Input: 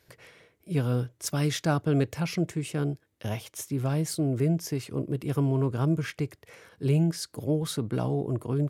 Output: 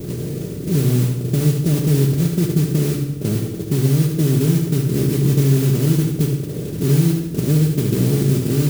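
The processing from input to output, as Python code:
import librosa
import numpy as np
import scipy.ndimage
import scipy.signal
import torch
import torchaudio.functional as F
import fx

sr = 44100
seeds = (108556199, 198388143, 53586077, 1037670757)

y = fx.bin_compress(x, sr, power=0.4)
y = scipy.signal.sosfilt(scipy.signal.cheby2(4, 70, [1600.0, 8200.0], 'bandstop', fs=sr, output='sos'), y)
y = fx.low_shelf(y, sr, hz=100.0, db=9.5)
y = fx.mod_noise(y, sr, seeds[0], snr_db=15)
y = fx.echo_feedback(y, sr, ms=72, feedback_pct=42, wet_db=-7.0)
y = fx.room_shoebox(y, sr, seeds[1], volume_m3=3200.0, walls='furnished', distance_m=1.2)
y = fx.band_squash(y, sr, depth_pct=40)
y = y * librosa.db_to_amplitude(2.0)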